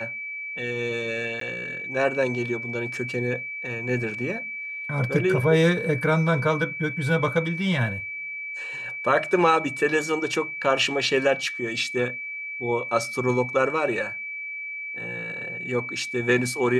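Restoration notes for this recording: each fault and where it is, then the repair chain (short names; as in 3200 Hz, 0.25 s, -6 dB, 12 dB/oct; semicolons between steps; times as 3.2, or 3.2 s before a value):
tone 2300 Hz -31 dBFS
1.4–1.41 gap 13 ms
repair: notch 2300 Hz, Q 30; interpolate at 1.4, 13 ms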